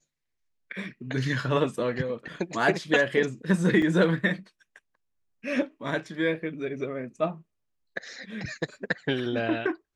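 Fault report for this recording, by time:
3.82 gap 3.1 ms

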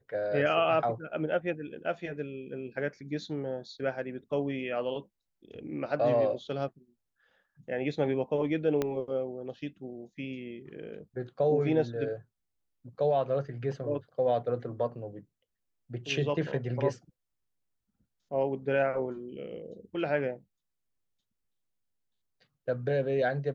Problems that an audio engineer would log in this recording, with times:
8.82 pop -16 dBFS

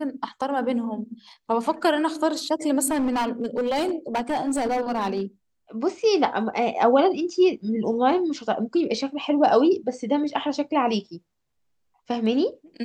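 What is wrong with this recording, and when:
2.86–5.22 clipped -20 dBFS

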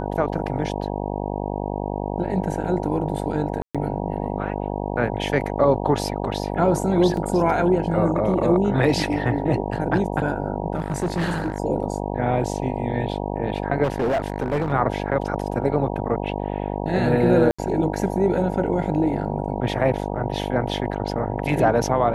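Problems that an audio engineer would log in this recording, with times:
buzz 50 Hz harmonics 19 -27 dBFS
3.62–3.75 gap 0.126 s
7.17 gap 2.1 ms
10.74–11.6 clipped -19 dBFS
13.83–14.73 clipped -18 dBFS
17.51–17.59 gap 75 ms

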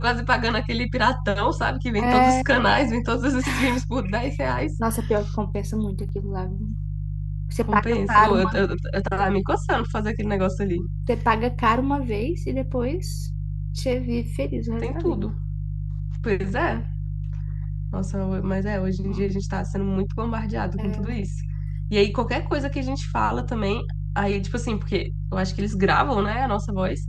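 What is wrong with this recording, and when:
hum 50 Hz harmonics 3 -28 dBFS
6.09 gap 2.5 ms

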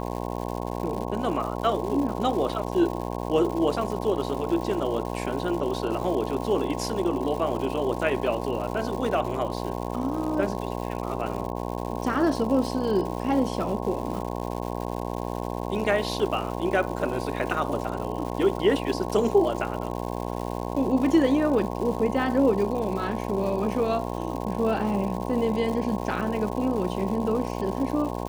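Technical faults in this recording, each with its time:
buzz 60 Hz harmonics 18 -31 dBFS
crackle 260/s -33 dBFS

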